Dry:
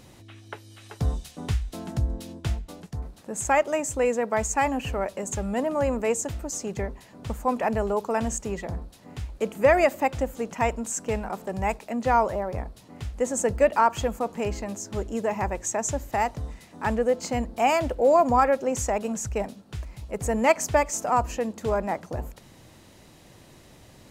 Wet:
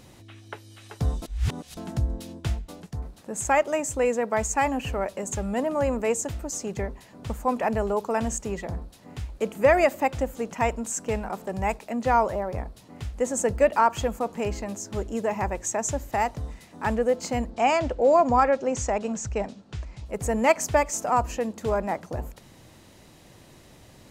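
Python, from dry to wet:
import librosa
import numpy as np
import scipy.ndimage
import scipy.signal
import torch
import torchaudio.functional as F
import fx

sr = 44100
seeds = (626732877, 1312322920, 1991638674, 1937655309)

y = fx.lowpass(x, sr, hz=7500.0, slope=24, at=(17.5, 20.06))
y = fx.edit(y, sr, fx.reverse_span(start_s=1.22, length_s=0.55), tone=tone)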